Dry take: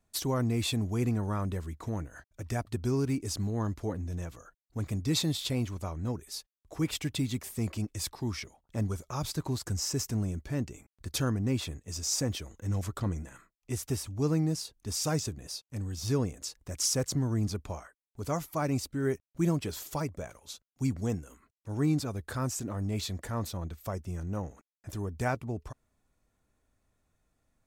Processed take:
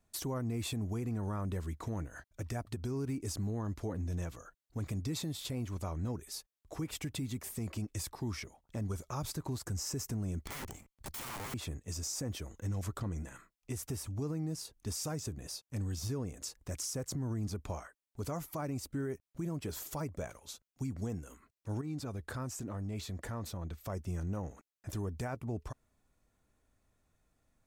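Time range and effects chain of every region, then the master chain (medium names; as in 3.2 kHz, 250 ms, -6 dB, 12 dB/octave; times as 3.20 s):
10.44–11.54 s: comb filter that takes the minimum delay 0.92 ms + integer overflow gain 36.5 dB
21.81–23.90 s: treble shelf 6.1 kHz -4.5 dB + compression 3:1, threshold -37 dBFS
whole clip: dynamic bell 3.8 kHz, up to -6 dB, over -49 dBFS, Q 0.81; compression, threshold -31 dBFS; peak limiter -29 dBFS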